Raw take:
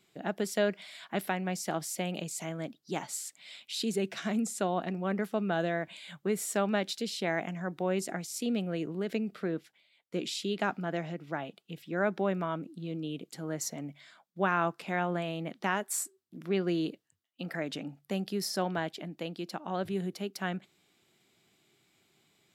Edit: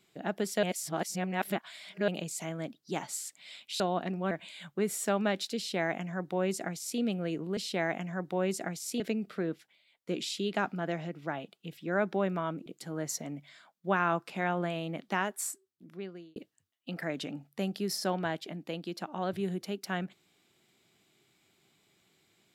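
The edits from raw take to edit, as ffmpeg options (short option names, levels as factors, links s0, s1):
-filter_complex "[0:a]asplit=9[s0][s1][s2][s3][s4][s5][s6][s7][s8];[s0]atrim=end=0.632[s9];[s1]atrim=start=0.628:end=2.082,asetpts=PTS-STARTPTS,areverse[s10];[s2]atrim=start=2.078:end=3.802[s11];[s3]atrim=start=4.608:end=5.122[s12];[s4]atrim=start=5.788:end=9.052[s13];[s5]atrim=start=7.048:end=8.482[s14];[s6]atrim=start=9.048:end=12.712[s15];[s7]atrim=start=13.178:end=16.88,asetpts=PTS-STARTPTS,afade=t=out:st=2.482:d=1.22[s16];[s8]atrim=start=16.88,asetpts=PTS-STARTPTS,afade=t=in:d=0.004:c=hsin[s17];[s9][s10]acrossfade=d=0.004:c1=hsin:c2=hsin[s18];[s18][s11]acrossfade=d=0.004:c1=hsin:c2=hsin[s19];[s19][s12]acrossfade=d=0.004:c1=hsin:c2=hsin[s20];[s20][s13]acrossfade=d=0.004:c1=hsin:c2=hsin[s21];[s21][s14]acrossfade=d=0.004:c1=hsin:c2=hsin[s22];[s22][s15]acrossfade=d=0.004:c1=hsin:c2=hsin[s23];[s16][s17]concat=n=2:v=0:a=1[s24];[s23][s24]acrossfade=d=0.004:c1=hsin:c2=hsin"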